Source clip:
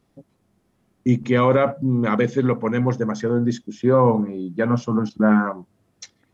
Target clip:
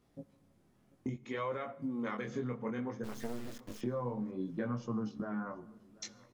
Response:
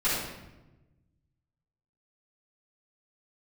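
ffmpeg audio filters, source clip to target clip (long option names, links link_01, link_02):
-filter_complex "[0:a]asettb=1/sr,asplit=3[link_01][link_02][link_03];[link_01]atrim=end=1.144[link_04];[link_02]atrim=start=1.14:end=2.28,asetpts=PTS-STARTPTS,afade=type=in:duration=0.004:curve=qsin,afade=type=out:start_time=1.136:duration=0.004:curve=qsin,lowshelf=frequency=330:gain=-11[link_05];[link_03]atrim=start=2.276[link_06];[link_04][link_05]acrossfade=duration=0.004:curve1=hsin:curve2=qsin[link_07];[link_07][link_06]acrossfade=duration=0.004:curve1=qsin:curve2=hsin,acompressor=threshold=-30dB:ratio=10,flanger=delay=17:depth=7.7:speed=0.62,asplit=3[link_08][link_09][link_10];[link_08]afade=type=out:start_time=3.03:duration=0.02[link_11];[link_09]acrusher=bits=5:dc=4:mix=0:aa=0.000001,afade=type=in:start_time=3.03:duration=0.02,afade=type=out:start_time=3.8:duration=0.02[link_12];[link_10]afade=type=in:start_time=3.8:duration=0.02[link_13];[link_11][link_12][link_13]amix=inputs=3:normalize=0,asplit=2[link_14][link_15];[link_15]adelay=736,lowpass=frequency=3900:poles=1,volume=-22.5dB,asplit=2[link_16][link_17];[link_17]adelay=736,lowpass=frequency=3900:poles=1,volume=0.53,asplit=2[link_18][link_19];[link_19]adelay=736,lowpass=frequency=3900:poles=1,volume=0.53,asplit=2[link_20][link_21];[link_21]adelay=736,lowpass=frequency=3900:poles=1,volume=0.53[link_22];[link_14][link_16][link_18][link_20][link_22]amix=inputs=5:normalize=0,asplit=2[link_23][link_24];[1:a]atrim=start_sample=2205,adelay=65[link_25];[link_24][link_25]afir=irnorm=-1:irlink=0,volume=-32dB[link_26];[link_23][link_26]amix=inputs=2:normalize=0,volume=-1.5dB"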